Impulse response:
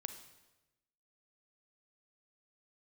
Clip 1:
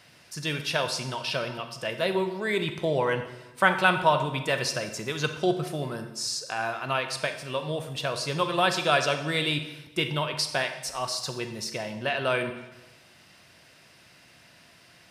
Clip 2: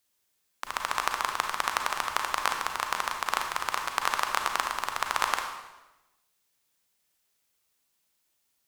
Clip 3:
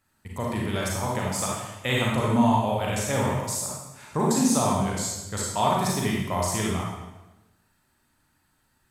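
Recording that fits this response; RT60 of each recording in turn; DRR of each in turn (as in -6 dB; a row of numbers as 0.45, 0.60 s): 1; 1.1, 1.1, 1.1 s; 8.0, 3.5, -4.0 dB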